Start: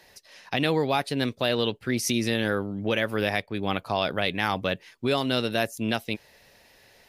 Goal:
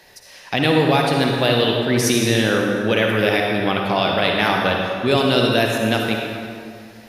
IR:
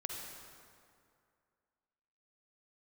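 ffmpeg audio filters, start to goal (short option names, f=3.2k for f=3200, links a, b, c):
-filter_complex "[0:a]bandreject=f=50:t=h:w=6,bandreject=f=100:t=h:w=6[a];[1:a]atrim=start_sample=2205[b];[a][b]afir=irnorm=-1:irlink=0,volume=8.5dB"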